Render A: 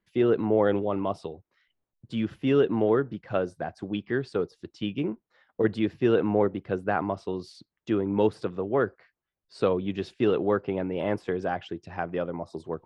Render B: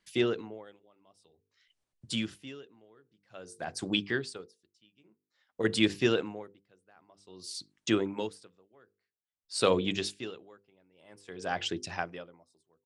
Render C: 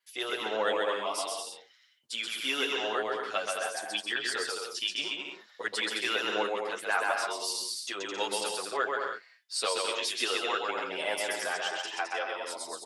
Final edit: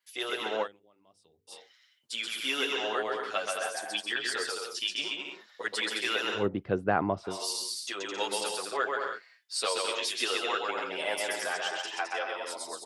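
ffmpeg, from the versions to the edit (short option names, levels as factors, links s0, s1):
-filter_complex "[2:a]asplit=3[s0][s1][s2];[s0]atrim=end=0.68,asetpts=PTS-STARTPTS[s3];[1:a]atrim=start=0.62:end=1.53,asetpts=PTS-STARTPTS[s4];[s1]atrim=start=1.47:end=6.49,asetpts=PTS-STARTPTS[s5];[0:a]atrim=start=6.33:end=7.39,asetpts=PTS-STARTPTS[s6];[s2]atrim=start=7.23,asetpts=PTS-STARTPTS[s7];[s3][s4]acrossfade=d=0.06:c1=tri:c2=tri[s8];[s8][s5]acrossfade=d=0.06:c1=tri:c2=tri[s9];[s9][s6]acrossfade=d=0.16:c1=tri:c2=tri[s10];[s10][s7]acrossfade=d=0.16:c1=tri:c2=tri"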